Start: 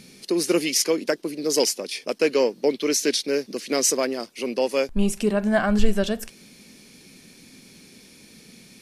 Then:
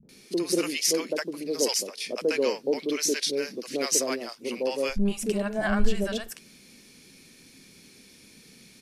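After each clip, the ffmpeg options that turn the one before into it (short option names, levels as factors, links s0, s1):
-filter_complex "[0:a]acrossover=split=200|690[s0][s1][s2];[s1]adelay=30[s3];[s2]adelay=90[s4];[s0][s3][s4]amix=inputs=3:normalize=0,volume=0.708"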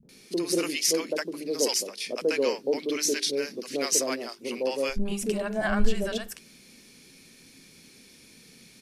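-af "bandreject=f=50:t=h:w=6,bandreject=f=100:t=h:w=6,bandreject=f=150:t=h:w=6,bandreject=f=200:t=h:w=6,bandreject=f=250:t=h:w=6,bandreject=f=300:t=h:w=6,bandreject=f=350:t=h:w=6,bandreject=f=400:t=h:w=6"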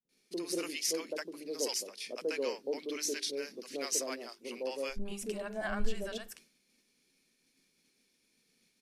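-af "agate=range=0.0224:threshold=0.00631:ratio=3:detection=peak,equalizer=f=99:w=0.88:g=-10,volume=0.376"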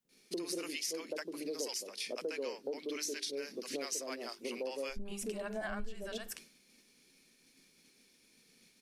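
-af "acompressor=threshold=0.00631:ratio=5,volume=2.24"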